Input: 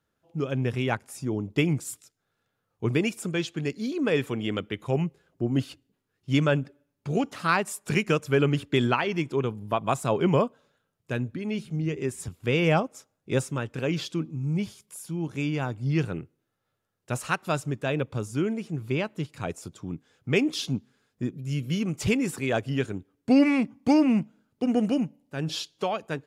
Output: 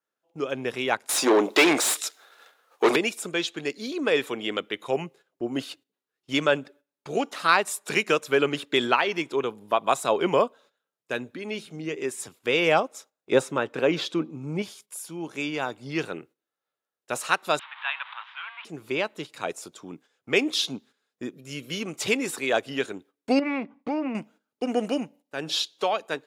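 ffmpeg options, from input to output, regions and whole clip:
ffmpeg -i in.wav -filter_complex "[0:a]asettb=1/sr,asplit=3[link_01][link_02][link_03];[link_01]atrim=end=1.094[link_04];[link_02]atrim=start=1.09:end=2.96,asetpts=PTS-STARTPTS,afade=type=in:duration=0.004:curve=qsin,afade=type=out:start_time=1.866:duration=0.004:curve=qsin,highpass=270,aemphasis=mode=production:type=cd,asplit=2[link_05][link_06];[link_06]highpass=frequency=720:poles=1,volume=32dB,asoftclip=type=tanh:threshold=-10dB[link_07];[link_05][link_07]amix=inputs=2:normalize=0,lowpass=frequency=2000:poles=1,volume=-6dB[link_08];[link_03]atrim=start=2.956[link_09];[link_04][link_08]acrossfade=duration=0.004:curve1=hsin:curve2=qsin[link_10];[link_10][link_09]acrossfade=duration=0.004:curve1=qsin:curve2=hsin,asettb=1/sr,asplit=3[link_11][link_12][link_13];[link_11]atrim=end=13.324[link_14];[link_12]atrim=start=13.32:end=14.62,asetpts=PTS-STARTPTS,afade=type=in:duration=0.004:curve=qsin,afade=type=out:start_time=1.296:duration=0.004:curve=qsin,highshelf=frequency=2600:gain=-11.5,acontrast=49[link_15];[link_13]atrim=start=14.616[link_16];[link_14][link_15]acrossfade=duration=0.004:curve1=hsin:curve2=qsin[link_17];[link_17][link_16]acrossfade=duration=0.004:curve1=qsin:curve2=hsin,asettb=1/sr,asplit=3[link_18][link_19][link_20];[link_18]atrim=end=17.594[link_21];[link_19]atrim=start=17.59:end=18.65,asetpts=PTS-STARTPTS,afade=type=in:duration=0.004:curve=qsin,afade=type=out:start_time=1.056:duration=0.004:curve=qsin,aeval=exprs='val(0)+0.5*0.0211*sgn(val(0))':channel_layout=same,asuperpass=centerf=1700:order=12:qfactor=0.67,afreqshift=38[link_22];[link_20]atrim=start=18.646[link_23];[link_21][link_22]acrossfade=duration=0.004:curve1=hsin:curve2=qsin[link_24];[link_24][link_23]acrossfade=duration=0.004:curve1=qsin:curve2=hsin,asettb=1/sr,asplit=3[link_25][link_26][link_27];[link_25]atrim=end=23.394[link_28];[link_26]atrim=start=23.39:end=24.15,asetpts=PTS-STARTPTS,afade=type=in:duration=0.004:curve=qsin,afade=type=out:start_time=0.756:duration=0.004:curve=qsin,lowpass=2200,acompressor=threshold=-22dB:ratio=16:attack=3.2:release=140:knee=1:detection=peak,asoftclip=type=hard:threshold=-19dB[link_29];[link_27]atrim=start=24.146[link_30];[link_28][link_29]acrossfade=duration=0.004:curve1=hsin:curve2=qsin[link_31];[link_31][link_30]acrossfade=duration=0.004:curve1=qsin:curve2=hsin,highpass=400,agate=range=-11dB:threshold=-55dB:ratio=16:detection=peak,adynamicequalizer=threshold=0.00141:dfrequency=3800:dqfactor=6.9:tfrequency=3800:tqfactor=6.9:attack=5:release=100:ratio=0.375:range=4:mode=boostabove:tftype=bell,volume=4dB" out.wav

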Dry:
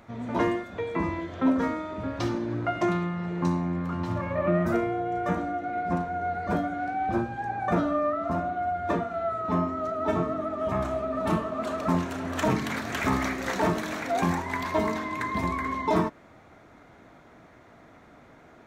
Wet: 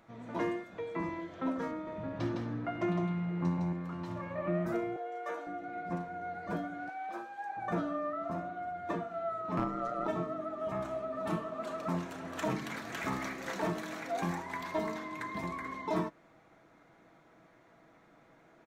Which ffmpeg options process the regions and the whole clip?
ffmpeg -i in.wav -filter_complex "[0:a]asettb=1/sr,asplit=3[link_01][link_02][link_03];[link_01]atrim=end=1.714[link_04];[link_02]atrim=start=1.71:end=3.73,asetpts=PTS-STARTPTS,afade=type=in:duration=0.004:curve=qsin,afade=type=out:start_time=2.016:duration=0.004:curve=qsin,bass=frequency=250:gain=6,treble=frequency=4000:gain=-8,aecho=1:1:159:0.631,atrim=end_sample=89082[link_05];[link_03]atrim=start=3.726[link_06];[link_04][link_05]acrossfade=duration=0.004:curve1=hsin:curve2=qsin[link_07];[link_07][link_06]acrossfade=duration=0.004:curve1=qsin:curve2=hsin,asettb=1/sr,asplit=3[link_08][link_09][link_10];[link_08]atrim=end=4.964[link_11];[link_09]atrim=start=4.96:end=5.47,asetpts=PTS-STARTPTS,afade=type=in:duration=0.004:curve=qsin,afade=type=out:start_time=0.506:duration=0.004:curve=qsin,highpass=frequency=410:width=0.5412,highpass=frequency=410:width=1.3066,asplit=2[link_12][link_13];[link_13]adelay=13,volume=-6.5dB[link_14];[link_12][link_14]amix=inputs=2:normalize=0,atrim=end_sample=22491[link_15];[link_10]atrim=start=5.466[link_16];[link_11][link_15]acrossfade=duration=0.004:curve1=hsin:curve2=qsin[link_17];[link_17][link_16]acrossfade=duration=0.004:curve1=qsin:curve2=hsin,asettb=1/sr,asplit=3[link_18][link_19][link_20];[link_18]atrim=end=6.894[link_21];[link_19]atrim=start=6.89:end=7.57,asetpts=PTS-STARTPTS,afade=type=in:duration=0.004:curve=qsin,afade=type=out:start_time=0.676:duration=0.004:curve=qsin,highpass=600,highshelf=frequency=8800:gain=6[link_22];[link_20]atrim=start=7.566[link_23];[link_21][link_22]acrossfade=duration=0.004:curve1=hsin:curve2=qsin[link_24];[link_24][link_23]acrossfade=duration=0.004:curve1=qsin:curve2=hsin,asettb=1/sr,asplit=3[link_25][link_26][link_27];[link_25]atrim=end=9.574[link_28];[link_26]atrim=start=9.57:end=10.07,asetpts=PTS-STARTPTS,afade=type=in:duration=0.004:curve=qsin,afade=type=out:start_time=0.496:duration=0.004:curve=qsin,acontrast=79,asoftclip=type=hard:threshold=-13dB,aeval=exprs='val(0)*sin(2*PI*61*n/s)':channel_layout=same[link_29];[link_27]atrim=start=10.066[link_30];[link_28][link_29]acrossfade=duration=0.004:curve1=hsin:curve2=qsin[link_31];[link_31][link_30]acrossfade=duration=0.004:curve1=qsin:curve2=hsin,equalizer=frequency=62:width_type=o:width=1.5:gain=-8,aecho=1:1:6.1:0.34,volume=-9dB" out.wav

